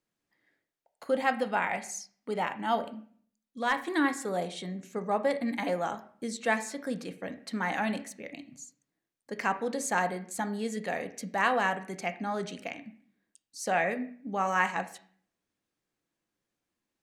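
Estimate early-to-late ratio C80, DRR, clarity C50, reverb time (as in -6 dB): 17.5 dB, 8.0 dB, 13.5 dB, 0.50 s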